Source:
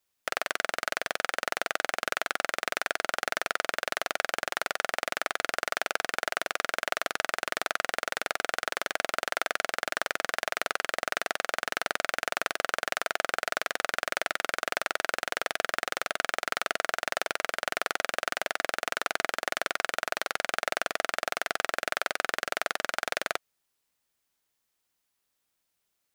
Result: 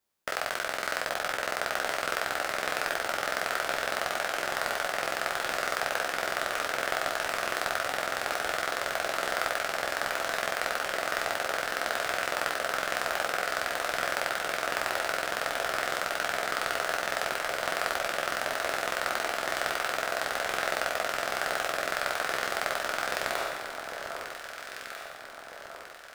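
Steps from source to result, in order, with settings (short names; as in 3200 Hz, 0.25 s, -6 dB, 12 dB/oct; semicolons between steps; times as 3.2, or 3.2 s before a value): spectral trails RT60 1.09 s; HPF 310 Hz 6 dB/oct; in parallel at -8 dB: sample-rate reducer 3400 Hz, jitter 0%; on the sum: echo with dull and thin repeats by turns 0.798 s, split 1300 Hz, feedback 68%, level -5.5 dB; gain -5 dB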